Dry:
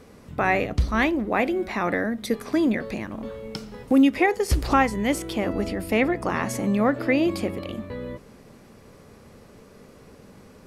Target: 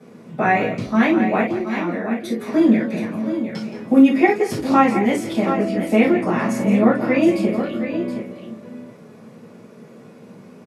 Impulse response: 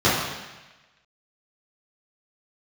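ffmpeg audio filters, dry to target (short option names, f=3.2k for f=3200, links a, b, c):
-filter_complex "[0:a]asettb=1/sr,asplit=3[a][b][c];[a]atrim=end=1.404[d];[b]atrim=start=1.4:end=2.38,asetpts=PTS-STARTPTS,afade=t=in:d=0.004:c=qsin,afade=t=out:st=0.976:d=0.004:c=qsin,acompressor=threshold=-27dB:ratio=6[e];[c]atrim=start=2.376[f];[d][e]acrossfade=d=0.004:c1=hsin:c2=qsin[g];[g][f]acrossfade=d=0.004:c1=qsin:c2=hsin,aecho=1:1:170|723:0.211|0.335[h];[1:a]atrim=start_sample=2205,atrim=end_sample=6174,asetrate=83790,aresample=44100[i];[h][i]afir=irnorm=-1:irlink=0,volume=-14dB"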